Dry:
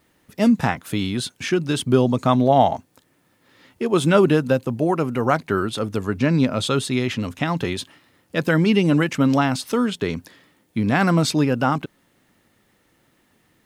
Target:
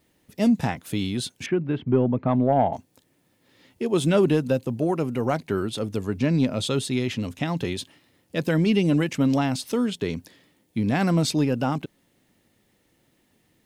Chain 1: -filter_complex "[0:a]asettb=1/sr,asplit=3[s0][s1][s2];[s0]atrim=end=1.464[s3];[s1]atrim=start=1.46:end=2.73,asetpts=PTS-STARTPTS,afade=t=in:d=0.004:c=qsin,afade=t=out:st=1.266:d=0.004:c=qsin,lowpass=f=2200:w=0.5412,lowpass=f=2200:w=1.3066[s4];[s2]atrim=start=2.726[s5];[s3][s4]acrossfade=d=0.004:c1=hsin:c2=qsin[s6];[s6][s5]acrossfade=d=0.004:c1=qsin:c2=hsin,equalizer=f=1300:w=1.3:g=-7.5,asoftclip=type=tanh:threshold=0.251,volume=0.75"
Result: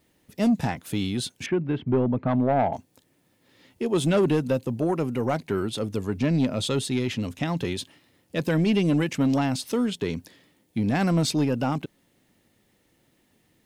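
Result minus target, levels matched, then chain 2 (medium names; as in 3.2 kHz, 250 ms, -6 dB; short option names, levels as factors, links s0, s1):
saturation: distortion +10 dB
-filter_complex "[0:a]asettb=1/sr,asplit=3[s0][s1][s2];[s0]atrim=end=1.464[s3];[s1]atrim=start=1.46:end=2.73,asetpts=PTS-STARTPTS,afade=t=in:d=0.004:c=qsin,afade=t=out:st=1.266:d=0.004:c=qsin,lowpass=f=2200:w=0.5412,lowpass=f=2200:w=1.3066[s4];[s2]atrim=start=2.726[s5];[s3][s4]acrossfade=d=0.004:c1=hsin:c2=qsin[s6];[s6][s5]acrossfade=d=0.004:c1=qsin:c2=hsin,equalizer=f=1300:w=1.3:g=-7.5,asoftclip=type=tanh:threshold=0.562,volume=0.75"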